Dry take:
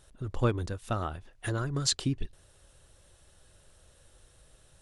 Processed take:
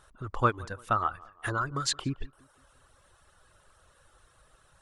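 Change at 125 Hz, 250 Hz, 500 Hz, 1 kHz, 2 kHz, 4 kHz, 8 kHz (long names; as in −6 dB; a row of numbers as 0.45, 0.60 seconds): −4.0, −3.0, −1.0, +9.0, +6.0, −2.0, −2.5 decibels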